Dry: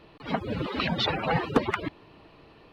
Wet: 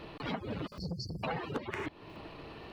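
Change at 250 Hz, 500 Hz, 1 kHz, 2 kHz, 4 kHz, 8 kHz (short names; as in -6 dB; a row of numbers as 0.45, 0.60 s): -9.5, -10.0, -10.5, -10.5, -13.5, -5.0 dB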